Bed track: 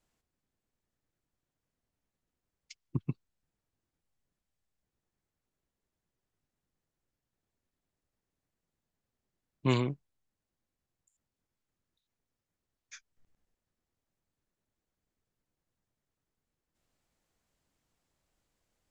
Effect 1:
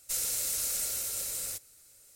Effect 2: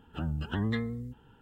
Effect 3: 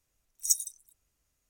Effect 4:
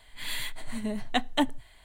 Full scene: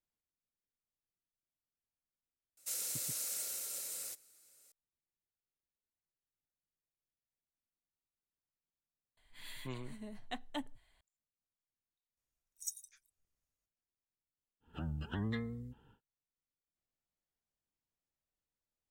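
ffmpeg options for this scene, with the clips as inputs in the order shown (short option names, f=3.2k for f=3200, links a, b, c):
-filter_complex "[0:a]volume=-17dB[a];[1:a]highpass=220[b];[2:a]acontrast=59[c];[b]atrim=end=2.15,asetpts=PTS-STARTPTS,volume=-7.5dB,afade=t=in:d=0.004:c=hsin,afade=t=out:st=2.146:d=0.004:c=hsin,adelay=2570[d];[4:a]atrim=end=1.84,asetpts=PTS-STARTPTS,volume=-16dB,afade=t=in:d=0.004:c=hsin,afade=t=out:st=1.836:d=0.004:c=hsin,adelay=9170[e];[3:a]atrim=end=1.49,asetpts=PTS-STARTPTS,volume=-16dB,afade=t=in:d=0.004:c=hsin,afade=t=out:st=1.486:d=0.004:c=hsin,adelay=12170[f];[c]atrim=end=1.41,asetpts=PTS-STARTPTS,volume=-13.5dB,afade=t=in:d=0.1,afade=t=out:st=1.31:d=0.1,adelay=643860S[g];[a][d][e][f][g]amix=inputs=5:normalize=0"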